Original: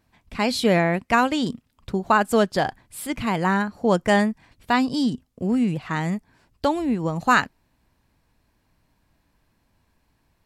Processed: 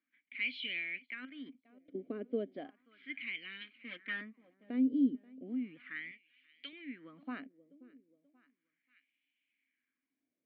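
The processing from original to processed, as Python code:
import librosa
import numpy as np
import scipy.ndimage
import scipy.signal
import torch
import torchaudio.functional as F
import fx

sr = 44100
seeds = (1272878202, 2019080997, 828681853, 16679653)

y = fx.lower_of_two(x, sr, delay_ms=3.8, at=(3.61, 4.21))
y = scipy.signal.sosfilt(scipy.signal.butter(4, 4100.0, 'lowpass', fs=sr, output='sos'), y)
y = fx.echo_feedback(y, sr, ms=532, feedback_pct=46, wet_db=-23)
y = fx.wah_lfo(y, sr, hz=0.35, low_hz=470.0, high_hz=2800.0, q=3.4)
y = fx.level_steps(y, sr, step_db=16, at=(1.06, 1.95))
y = fx.dynamic_eq(y, sr, hz=1900.0, q=0.74, threshold_db=-44.0, ratio=4.0, max_db=-3)
y = fx.vowel_filter(y, sr, vowel='i')
y = fx.peak_eq(y, sr, hz=190.0, db=-12.0, octaves=1.6, at=(6.11, 6.73))
y = F.gain(torch.from_numpy(y), 9.0).numpy()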